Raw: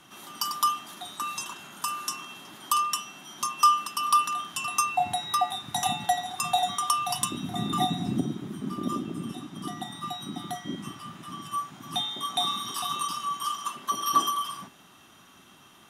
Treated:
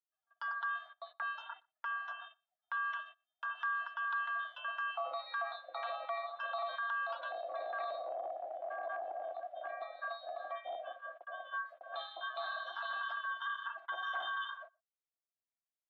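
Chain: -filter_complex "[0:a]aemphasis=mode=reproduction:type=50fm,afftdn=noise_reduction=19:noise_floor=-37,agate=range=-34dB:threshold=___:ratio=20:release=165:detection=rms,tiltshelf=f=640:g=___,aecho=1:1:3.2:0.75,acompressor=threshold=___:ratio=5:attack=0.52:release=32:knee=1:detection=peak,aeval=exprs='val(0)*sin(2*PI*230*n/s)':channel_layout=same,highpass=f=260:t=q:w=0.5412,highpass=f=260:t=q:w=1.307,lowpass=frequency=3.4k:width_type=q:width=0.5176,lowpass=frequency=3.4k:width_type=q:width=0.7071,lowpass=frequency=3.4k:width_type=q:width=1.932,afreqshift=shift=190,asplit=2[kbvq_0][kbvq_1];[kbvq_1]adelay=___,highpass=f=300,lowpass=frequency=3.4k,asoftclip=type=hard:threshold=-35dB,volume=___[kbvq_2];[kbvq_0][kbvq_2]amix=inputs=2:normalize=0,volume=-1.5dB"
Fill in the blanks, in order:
-44dB, 3, -30dB, 120, -29dB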